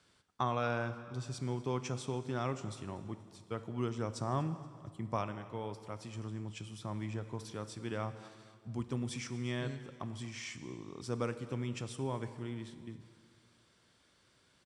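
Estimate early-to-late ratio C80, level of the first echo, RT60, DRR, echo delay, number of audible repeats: 12.5 dB, -21.5 dB, 1.9 s, 10.5 dB, 0.237 s, 3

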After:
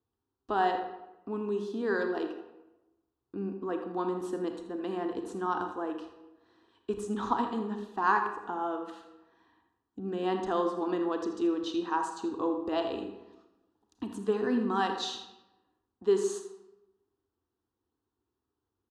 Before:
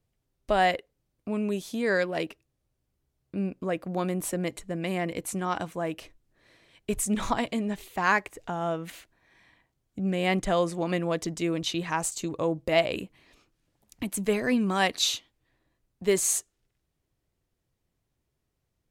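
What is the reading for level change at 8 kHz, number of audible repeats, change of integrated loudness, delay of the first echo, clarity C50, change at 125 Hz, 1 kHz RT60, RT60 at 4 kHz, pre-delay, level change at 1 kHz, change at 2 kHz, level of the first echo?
-17.0 dB, 1, -4.0 dB, 81 ms, 6.0 dB, -11.5 dB, 0.95 s, 0.65 s, 28 ms, -0.5 dB, -7.5 dB, -12.0 dB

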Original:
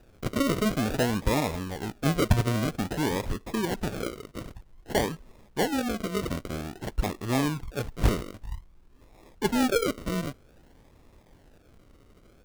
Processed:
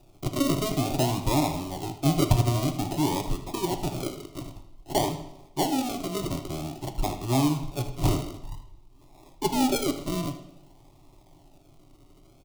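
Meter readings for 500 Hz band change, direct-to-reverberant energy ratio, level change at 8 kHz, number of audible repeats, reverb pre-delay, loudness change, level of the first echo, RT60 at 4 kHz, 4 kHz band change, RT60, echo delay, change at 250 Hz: -1.0 dB, 6.5 dB, +3.5 dB, 1, 7 ms, +1.0 dB, -13.0 dB, 0.75 s, +2.0 dB, 0.90 s, 78 ms, +1.0 dB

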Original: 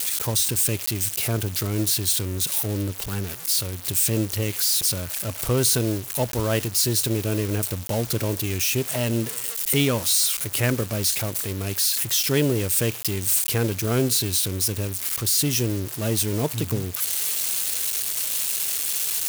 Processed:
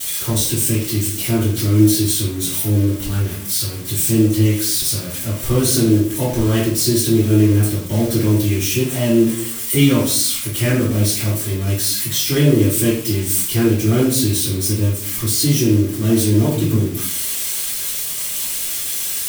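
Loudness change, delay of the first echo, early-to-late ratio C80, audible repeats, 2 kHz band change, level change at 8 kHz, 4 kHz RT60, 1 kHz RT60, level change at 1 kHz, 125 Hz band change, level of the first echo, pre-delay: +5.5 dB, none, 8.0 dB, none, +3.0 dB, +3.0 dB, 0.40 s, 0.50 s, +2.5 dB, +9.0 dB, none, 3 ms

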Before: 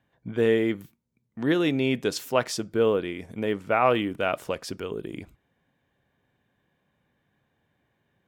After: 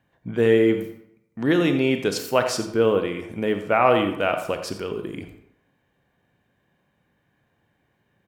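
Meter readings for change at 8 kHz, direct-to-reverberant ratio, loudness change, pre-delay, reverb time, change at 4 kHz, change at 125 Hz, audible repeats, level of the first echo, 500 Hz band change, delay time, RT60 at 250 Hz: +3.5 dB, 6.5 dB, +4.0 dB, 28 ms, 0.80 s, +3.0 dB, +4.0 dB, 1, -12.5 dB, +4.0 dB, 87 ms, 0.70 s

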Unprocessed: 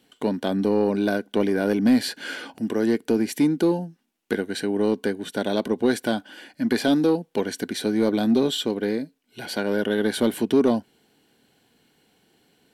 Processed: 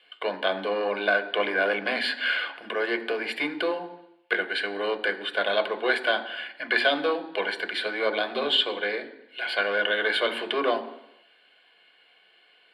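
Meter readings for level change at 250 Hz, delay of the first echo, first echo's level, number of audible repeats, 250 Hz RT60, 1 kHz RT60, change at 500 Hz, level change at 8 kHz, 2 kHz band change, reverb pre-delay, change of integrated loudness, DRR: -15.0 dB, none, none, none, 0.80 s, 0.85 s, -3.0 dB, under -15 dB, +8.5 dB, 3 ms, -2.5 dB, 7.5 dB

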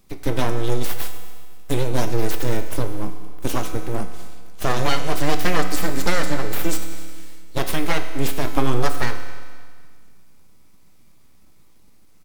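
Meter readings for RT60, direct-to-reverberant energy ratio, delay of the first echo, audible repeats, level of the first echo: 1.7 s, 6.5 dB, 0.257 s, 2, -21.0 dB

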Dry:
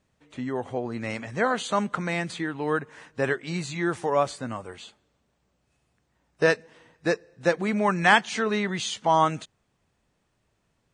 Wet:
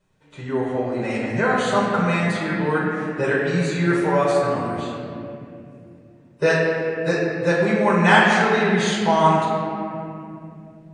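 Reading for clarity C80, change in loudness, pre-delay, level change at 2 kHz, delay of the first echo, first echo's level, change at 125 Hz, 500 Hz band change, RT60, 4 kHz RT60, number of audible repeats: 0.5 dB, +6.0 dB, 5 ms, +6.0 dB, none, none, +9.5 dB, +7.0 dB, 2.7 s, 1.6 s, none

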